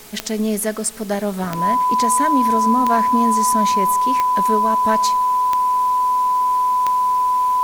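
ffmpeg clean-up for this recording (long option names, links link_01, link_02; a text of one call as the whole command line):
ffmpeg -i in.wav -af "adeclick=threshold=4,bandreject=frequency=422.5:width_type=h:width=4,bandreject=frequency=845:width_type=h:width=4,bandreject=frequency=1267.5:width_type=h:width=4,bandreject=frequency=1690:width_type=h:width=4,bandreject=frequency=2112.5:width_type=h:width=4,bandreject=frequency=2535:width_type=h:width=4,bandreject=frequency=1000:width=30,afwtdn=0.0089" out.wav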